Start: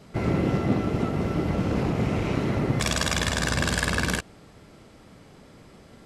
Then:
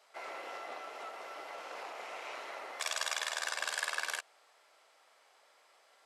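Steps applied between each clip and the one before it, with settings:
high-pass filter 650 Hz 24 dB per octave
level −8.5 dB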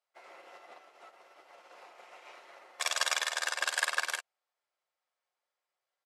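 comb filter 5.6 ms, depth 33%
expander for the loud parts 2.5 to 1, over −54 dBFS
level +6.5 dB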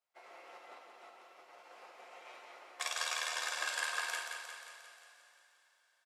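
downward compressor 2 to 1, threshold −34 dBFS, peak gain reduction 6 dB
on a send: repeating echo 177 ms, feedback 60%, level −6 dB
on the sum: coupled-rooms reverb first 0.56 s, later 4 s, from −15 dB, DRR 3.5 dB
level −3.5 dB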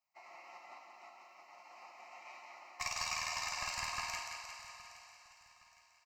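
one-sided soft clipper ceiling −28.5 dBFS
phaser with its sweep stopped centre 2,300 Hz, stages 8
repeating echo 816 ms, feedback 38%, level −18 dB
level +3 dB

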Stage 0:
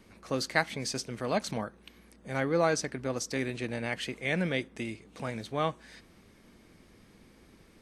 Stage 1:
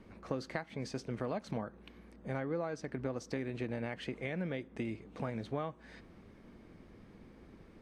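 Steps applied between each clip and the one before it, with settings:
downward compressor 16 to 1, threshold −34 dBFS, peak gain reduction 15.5 dB
low-pass filter 1,200 Hz 6 dB per octave
level +2.5 dB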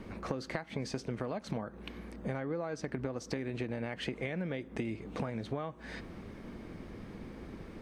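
downward compressor, threshold −43 dBFS, peak gain reduction 11.5 dB
level +10 dB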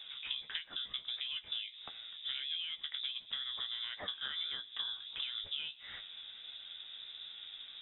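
voice inversion scrambler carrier 3,700 Hz
flanger 1.5 Hz, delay 9.4 ms, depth 6.3 ms, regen +37%

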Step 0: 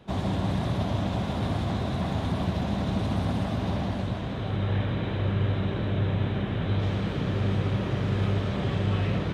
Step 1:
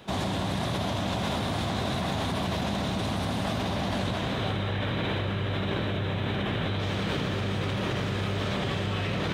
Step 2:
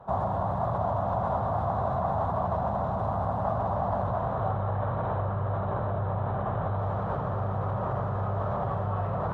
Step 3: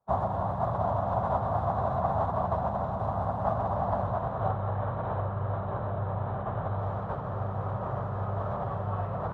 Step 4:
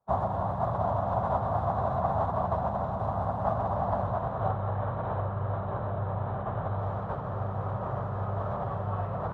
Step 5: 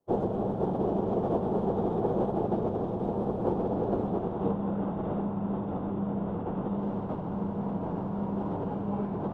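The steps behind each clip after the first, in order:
spectral tilt +2 dB per octave; in parallel at −0.5 dB: compressor whose output falls as the input rises −34 dBFS, ratio −0.5; on the sum: level −1.5 dB
drawn EQ curve 120 Hz 0 dB, 310 Hz −13 dB, 690 Hz +6 dB, 1,200 Hz +3 dB, 2,300 Hz −26 dB, 4,500 Hz −29 dB; level +1 dB
expander for the loud parts 2.5 to 1, over −48 dBFS; level +2.5 dB
no processing that can be heard
frequency shifter −300 Hz

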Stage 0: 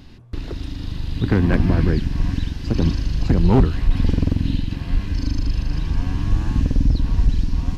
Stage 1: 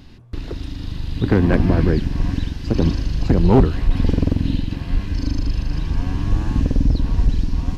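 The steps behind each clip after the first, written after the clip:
dynamic equaliser 510 Hz, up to +5 dB, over −33 dBFS, Q 0.76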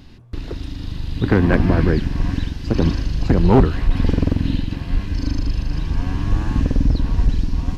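dynamic equaliser 1,500 Hz, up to +4 dB, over −38 dBFS, Q 0.84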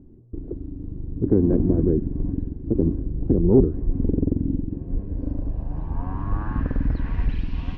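low-pass filter sweep 370 Hz → 2,900 Hz, 0:04.71–0:07.61
level −6.5 dB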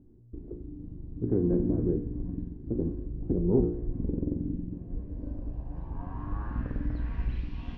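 tuned comb filter 59 Hz, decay 0.56 s, harmonics all, mix 80%

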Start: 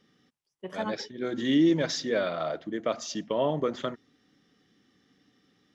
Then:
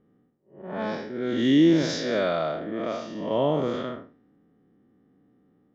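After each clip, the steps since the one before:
spectrum smeared in time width 197 ms
low-pass that shuts in the quiet parts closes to 750 Hz, open at −26 dBFS
level +6.5 dB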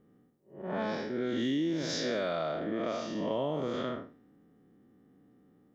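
high-shelf EQ 5,400 Hz +5.5 dB
downward compressor 6 to 1, threshold −29 dBFS, peak gain reduction 14 dB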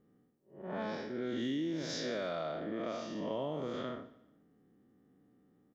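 repeating echo 146 ms, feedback 36%, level −19 dB
level −5 dB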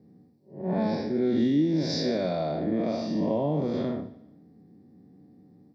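convolution reverb, pre-delay 3 ms, DRR 11.5 dB

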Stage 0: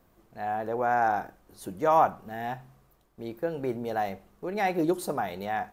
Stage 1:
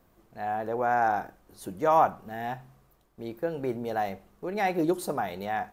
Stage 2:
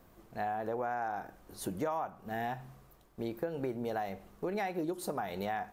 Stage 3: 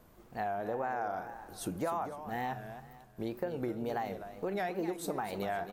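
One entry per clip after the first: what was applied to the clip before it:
no processing that can be heard
downward compressor 10 to 1, threshold −35 dBFS, peak gain reduction 19 dB; level +3 dB
repeating echo 255 ms, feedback 34%, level −11 dB; tape wow and flutter 120 cents

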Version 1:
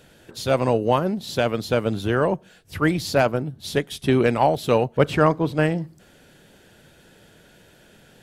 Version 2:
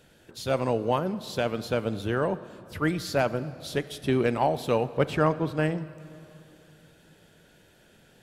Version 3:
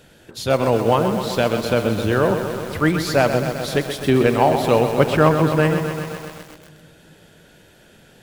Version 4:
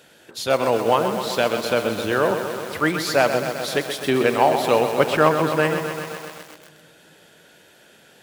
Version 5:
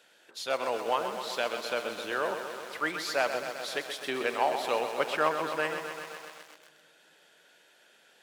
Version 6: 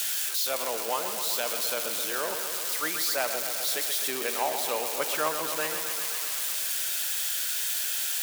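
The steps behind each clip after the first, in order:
convolution reverb RT60 2.8 s, pre-delay 6 ms, DRR 15 dB; level −6 dB
feedback echo at a low word length 129 ms, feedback 80%, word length 7 bits, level −8 dB; level +8 dB
high-pass filter 460 Hz 6 dB per octave; level +1 dB
meter weighting curve A; level −9 dB
spike at every zero crossing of −19 dBFS; level −2 dB

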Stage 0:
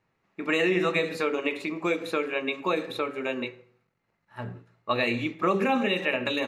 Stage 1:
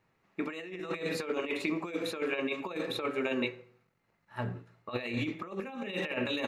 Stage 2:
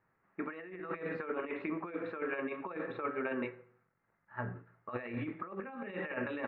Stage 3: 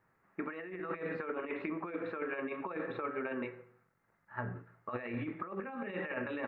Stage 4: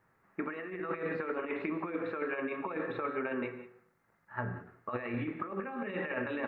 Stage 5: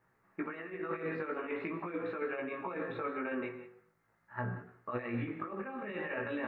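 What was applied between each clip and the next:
compressor whose output falls as the input rises −30 dBFS, ratio −0.5; level −3 dB
transistor ladder low-pass 1,900 Hz, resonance 45%; level +4 dB
downward compressor, threshold −37 dBFS, peak gain reduction 6 dB; level +3 dB
reverb whose tail is shaped and stops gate 210 ms rising, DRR 12 dB; level +2.5 dB
chorus effect 0.43 Hz, delay 16 ms, depth 3.1 ms; level +1 dB

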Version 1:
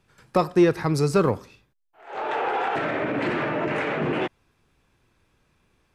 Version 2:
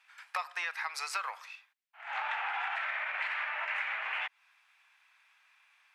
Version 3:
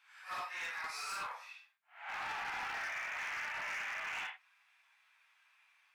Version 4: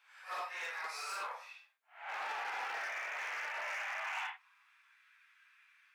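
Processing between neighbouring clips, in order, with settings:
Butterworth high-pass 770 Hz 36 dB per octave; parametric band 2,200 Hz +12.5 dB 1.5 octaves; downward compressor, threshold −29 dBFS, peak gain reduction 13 dB; level −3.5 dB
random phases in long frames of 200 ms; hard clipping −33 dBFS, distortion −12 dB; level −3.5 dB
high-pass filter sweep 480 Hz → 1,500 Hz, 0:03.45–0:05.04; level −1 dB

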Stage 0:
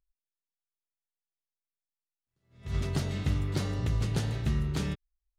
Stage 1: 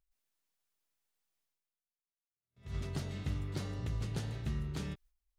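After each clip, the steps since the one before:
noise gate with hold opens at −49 dBFS
reversed playback
upward compression, threshold −49 dBFS
reversed playback
level −8 dB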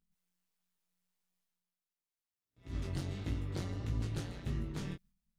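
amplitude modulation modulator 180 Hz, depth 70%
chorus effect 1.5 Hz, delay 18 ms, depth 3.9 ms
level +5.5 dB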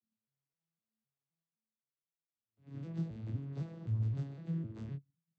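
vocoder with an arpeggio as carrier major triad, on A2, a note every 257 ms
level +3 dB

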